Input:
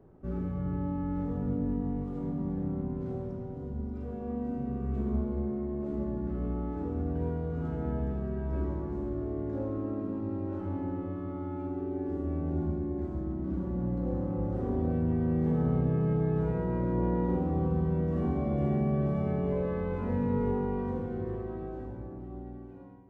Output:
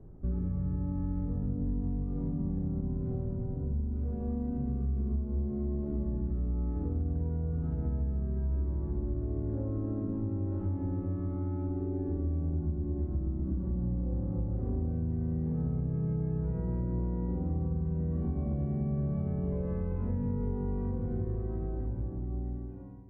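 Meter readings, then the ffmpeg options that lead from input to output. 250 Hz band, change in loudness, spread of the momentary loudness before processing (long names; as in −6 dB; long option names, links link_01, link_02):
−3.0 dB, −1.5 dB, 9 LU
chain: -af "aemphasis=mode=reproduction:type=riaa,acompressor=threshold=-24dB:ratio=6,volume=-4.5dB"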